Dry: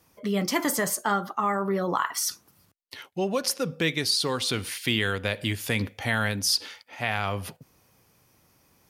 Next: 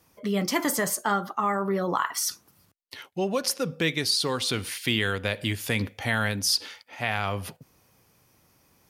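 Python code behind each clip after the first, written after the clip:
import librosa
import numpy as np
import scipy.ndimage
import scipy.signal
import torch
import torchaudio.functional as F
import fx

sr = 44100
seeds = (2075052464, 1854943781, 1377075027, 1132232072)

y = x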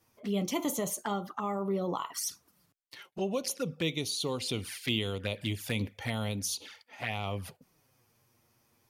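y = fx.env_flanger(x, sr, rest_ms=9.0, full_db=-23.5)
y = F.gain(torch.from_numpy(y), -4.0).numpy()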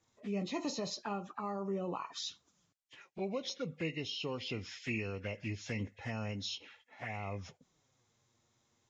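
y = fx.freq_compress(x, sr, knee_hz=1600.0, ratio=1.5)
y = F.gain(torch.from_numpy(y), -5.5).numpy()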